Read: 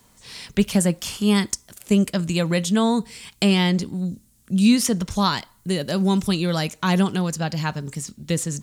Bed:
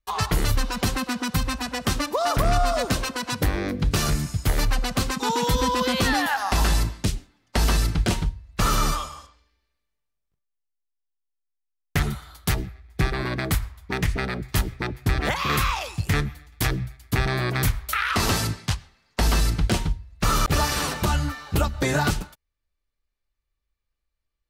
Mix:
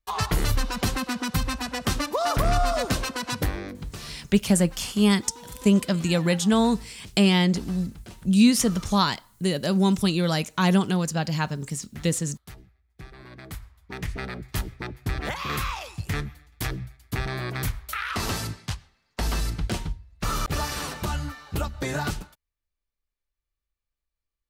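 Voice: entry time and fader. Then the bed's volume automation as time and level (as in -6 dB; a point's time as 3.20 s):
3.75 s, -1.0 dB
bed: 3.38 s -1.5 dB
4.16 s -21 dB
13.05 s -21 dB
14.22 s -6 dB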